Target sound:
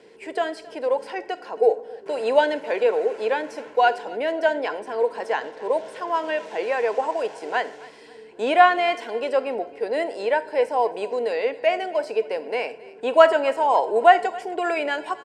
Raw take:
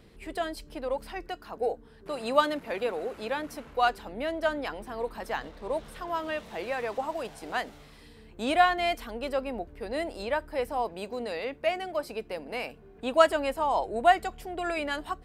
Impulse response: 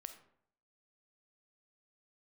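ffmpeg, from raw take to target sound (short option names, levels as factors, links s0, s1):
-filter_complex "[0:a]asuperstop=centerf=1200:order=4:qfactor=4.6,highpass=360,equalizer=f=440:t=q:w=4:g=9,equalizer=f=1100:t=q:w=4:g=5,equalizer=f=3800:t=q:w=4:g=-6,lowpass=f=8500:w=0.5412,lowpass=f=8500:w=1.3066,aecho=1:1:270|540|810:0.0841|0.032|0.0121,asplit=2[s0][s1];[1:a]atrim=start_sample=2205[s2];[s1][s2]afir=irnorm=-1:irlink=0,volume=1.41[s3];[s0][s3]amix=inputs=2:normalize=0,acrossover=split=4000[s4][s5];[s5]acompressor=threshold=0.00501:ratio=4:attack=1:release=60[s6];[s4][s6]amix=inputs=2:normalize=0,volume=1.19"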